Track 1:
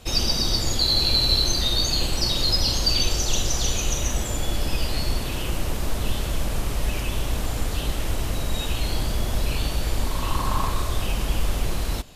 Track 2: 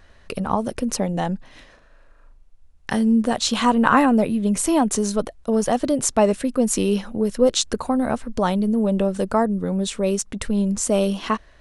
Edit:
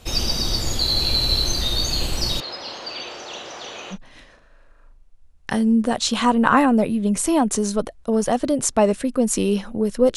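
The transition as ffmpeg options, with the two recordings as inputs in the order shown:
-filter_complex "[0:a]asettb=1/sr,asplit=3[s0][s1][s2];[s0]atrim=end=2.404[s3];[s1]atrim=start=2.4:end=3.98,asetpts=PTS-STARTPTS,afade=t=in:d=0.004:c=qsin,afade=t=out:st=1.576:d=0.004:c=qsin,highpass=490,lowpass=2500[s4];[s2]atrim=start=3.976[s5];[s3][s4]acrossfade=d=0.004:c1=hsin:c2=qsin[s6];[s6][s5]acrossfade=d=0.004:c1=qsin:c2=hsin,apad=whole_dur=10.16,atrim=end=10.16,atrim=end=3.98,asetpts=PTS-STARTPTS[s7];[1:a]atrim=start=1.3:end=7.56,asetpts=PTS-STARTPTS[s8];[s7][s8]acrossfade=d=0.08:c1=tri:c2=tri"

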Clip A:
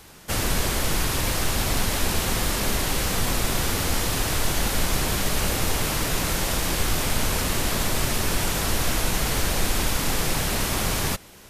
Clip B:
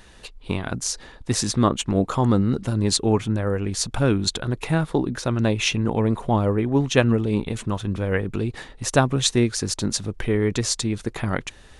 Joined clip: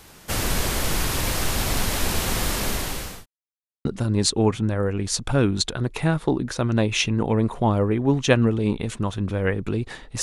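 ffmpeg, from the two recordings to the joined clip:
-filter_complex "[0:a]apad=whole_dur=10.22,atrim=end=10.22,asplit=2[s0][s1];[s0]atrim=end=3.26,asetpts=PTS-STARTPTS,afade=t=out:st=2.41:d=0.85:c=qsin[s2];[s1]atrim=start=3.26:end=3.85,asetpts=PTS-STARTPTS,volume=0[s3];[1:a]atrim=start=2.52:end=8.89,asetpts=PTS-STARTPTS,afade=t=in:d=0.004:c=hsin[s4];[s2][s3][s4]concat=n=3:v=0:a=1"

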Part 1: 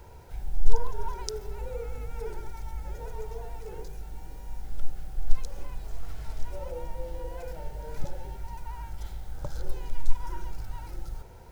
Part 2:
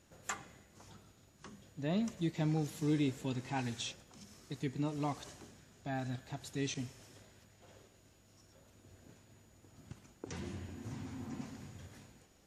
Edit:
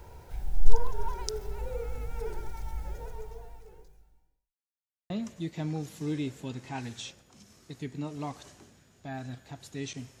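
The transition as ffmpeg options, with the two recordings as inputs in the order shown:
-filter_complex "[0:a]apad=whole_dur=10.2,atrim=end=10.2,asplit=2[s0][s1];[s0]atrim=end=4.55,asetpts=PTS-STARTPTS,afade=t=out:st=2.81:d=1.74:c=qua[s2];[s1]atrim=start=4.55:end=5.1,asetpts=PTS-STARTPTS,volume=0[s3];[1:a]atrim=start=1.91:end=7.01,asetpts=PTS-STARTPTS,afade=t=in:d=0.004:c=hsin[s4];[s2][s3][s4]concat=n=3:v=0:a=1"

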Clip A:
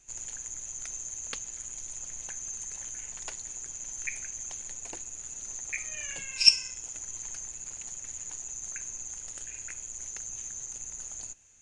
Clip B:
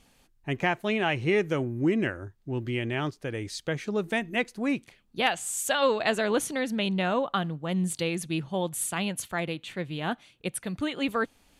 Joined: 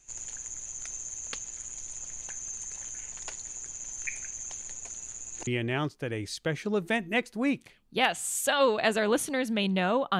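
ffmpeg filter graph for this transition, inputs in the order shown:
-filter_complex "[0:a]apad=whole_dur=10.19,atrim=end=10.19,asplit=2[s0][s1];[s0]atrim=end=4.892[s2];[s1]atrim=start=4.888:end=5.472,asetpts=PTS-STARTPTS,areverse[s3];[1:a]atrim=start=2.688:end=7.41[s4];[s2][s3]acrossfade=d=0.004:c1=hsin:c2=hsin[s5];[s5][s4]acrossfade=d=0.004:c1=hsin:c2=hsin"

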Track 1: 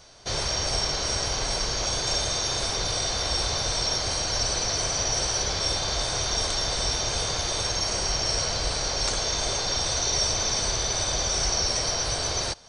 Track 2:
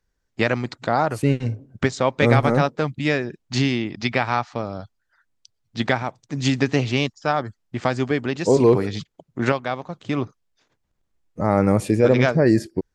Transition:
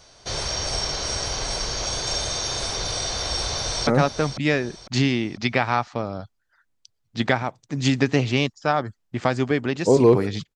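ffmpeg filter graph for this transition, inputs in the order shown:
-filter_complex "[0:a]apad=whole_dur=10.55,atrim=end=10.55,atrim=end=3.872[s0];[1:a]atrim=start=2.468:end=9.15[s1];[s0][s1]acrossfade=d=0.004:c1=hsin:c2=hsin,asplit=2[s2][s3];[s3]afade=t=in:st=3.48:d=0.01,afade=t=out:st=3.87:d=0.01,aecho=0:1:500|1000|1500|2000:0.316228|0.126491|0.0505964|0.0202386[s4];[s2][s4]amix=inputs=2:normalize=0"

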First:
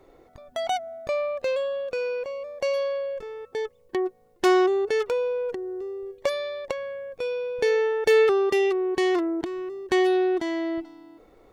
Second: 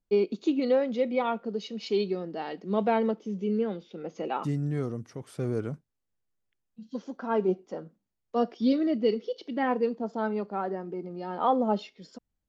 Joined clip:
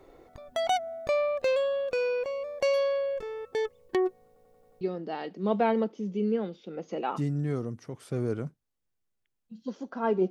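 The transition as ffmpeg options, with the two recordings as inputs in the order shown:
-filter_complex "[0:a]apad=whole_dur=10.3,atrim=end=10.3,asplit=6[s0][s1][s2][s3][s4][s5];[s0]atrim=end=4.362[s6];[s1]atrim=start=4.268:end=4.362[s7];[s2]atrim=start=4.268:end=4.362[s8];[s3]atrim=start=4.268:end=4.362[s9];[s4]atrim=start=4.268:end=4.362[s10];[s5]atrim=start=4.268:end=4.362[s11];[1:a]atrim=start=2.078:end=7.57[s12];[s6][s7]acrossfade=d=0.004:c1=hsin:c2=hsin[s13];[s13][s8]acrossfade=d=0.004:c1=hsin:c2=hsin[s14];[s14][s9]acrossfade=d=0.004:c1=hsin:c2=hsin[s15];[s15][s10]acrossfade=d=0.004:c1=hsin:c2=hsin[s16];[s16][s11]acrossfade=d=0.004:c1=hsin:c2=hsin[s17];[s17][s12]acrossfade=d=0.004:c1=hsin:c2=hsin"

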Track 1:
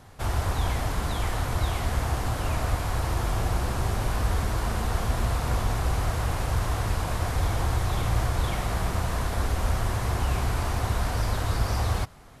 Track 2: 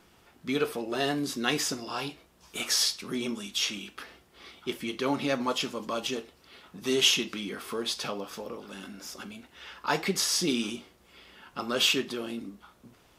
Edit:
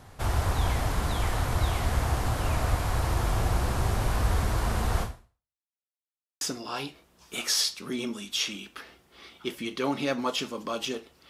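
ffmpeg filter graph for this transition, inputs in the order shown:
-filter_complex "[0:a]apad=whole_dur=11.29,atrim=end=11.29,asplit=2[s0][s1];[s0]atrim=end=5.63,asetpts=PTS-STARTPTS,afade=t=out:st=5.02:d=0.61:c=exp[s2];[s1]atrim=start=5.63:end=6.41,asetpts=PTS-STARTPTS,volume=0[s3];[1:a]atrim=start=1.63:end=6.51,asetpts=PTS-STARTPTS,afade=t=in:d=0.004:c=hsin[s4];[s2][s3][s4]concat=n=3:v=0:a=1"

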